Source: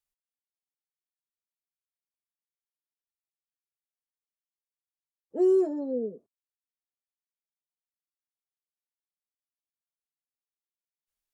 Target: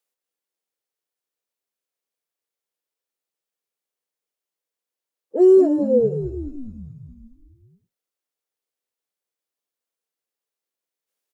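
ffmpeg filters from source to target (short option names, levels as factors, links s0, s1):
-filter_complex "[0:a]highpass=250,equalizer=f=480:w=2.2:g=9.5,asplit=2[s0][s1];[s1]asplit=8[s2][s3][s4][s5][s6][s7][s8][s9];[s2]adelay=211,afreqshift=-76,volume=0.282[s10];[s3]adelay=422,afreqshift=-152,volume=0.18[s11];[s4]adelay=633,afreqshift=-228,volume=0.115[s12];[s5]adelay=844,afreqshift=-304,volume=0.0741[s13];[s6]adelay=1055,afreqshift=-380,volume=0.0473[s14];[s7]adelay=1266,afreqshift=-456,volume=0.0302[s15];[s8]adelay=1477,afreqshift=-532,volume=0.0193[s16];[s9]adelay=1688,afreqshift=-608,volume=0.0124[s17];[s10][s11][s12][s13][s14][s15][s16][s17]amix=inputs=8:normalize=0[s18];[s0][s18]amix=inputs=2:normalize=0,volume=2"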